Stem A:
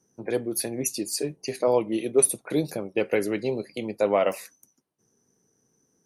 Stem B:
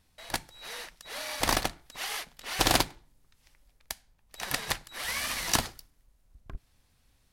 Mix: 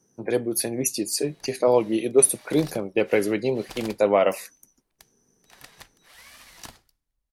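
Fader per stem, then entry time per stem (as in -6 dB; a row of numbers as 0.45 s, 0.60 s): +3.0 dB, -16.0 dB; 0.00 s, 1.10 s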